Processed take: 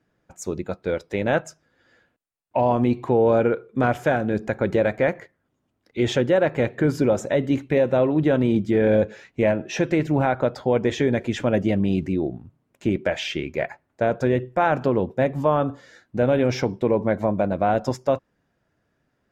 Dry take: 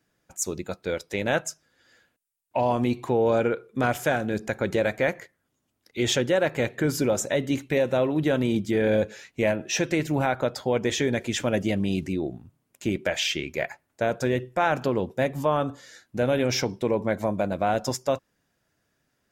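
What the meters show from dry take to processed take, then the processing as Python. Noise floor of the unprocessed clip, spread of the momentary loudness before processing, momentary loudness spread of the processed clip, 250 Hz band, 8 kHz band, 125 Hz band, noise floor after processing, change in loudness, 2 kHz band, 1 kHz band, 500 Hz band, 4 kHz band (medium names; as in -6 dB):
-75 dBFS, 8 LU, 9 LU, +4.5 dB, -9.0 dB, +4.5 dB, -73 dBFS, +3.5 dB, 0.0 dB, +3.0 dB, +4.0 dB, -4.0 dB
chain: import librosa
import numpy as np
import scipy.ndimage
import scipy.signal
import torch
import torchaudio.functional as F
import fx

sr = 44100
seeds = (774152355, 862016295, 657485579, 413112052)

y = fx.lowpass(x, sr, hz=1400.0, slope=6)
y = y * librosa.db_to_amplitude(4.5)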